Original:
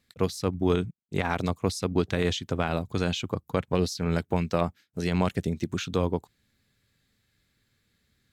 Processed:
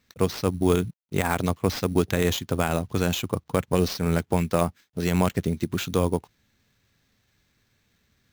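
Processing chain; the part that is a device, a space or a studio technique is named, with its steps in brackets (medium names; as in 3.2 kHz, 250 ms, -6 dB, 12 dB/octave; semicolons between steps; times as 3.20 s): early companding sampler (sample-rate reducer 10 kHz, jitter 0%; companded quantiser 8-bit); trim +3 dB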